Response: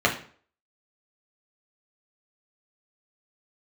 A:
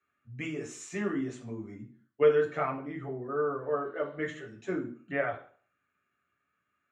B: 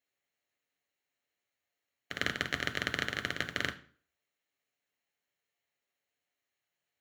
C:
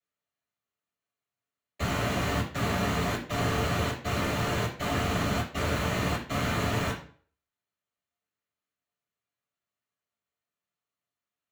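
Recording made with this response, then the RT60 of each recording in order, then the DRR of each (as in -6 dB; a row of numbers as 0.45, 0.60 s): A; 0.45, 0.45, 0.45 s; -1.5, 7.0, -10.0 dB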